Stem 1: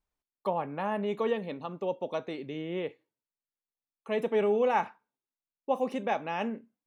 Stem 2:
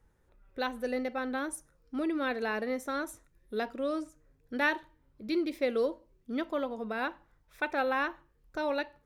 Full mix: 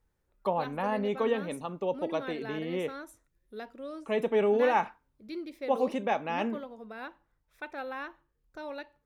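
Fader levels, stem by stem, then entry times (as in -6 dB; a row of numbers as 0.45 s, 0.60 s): +1.0 dB, -8.5 dB; 0.00 s, 0.00 s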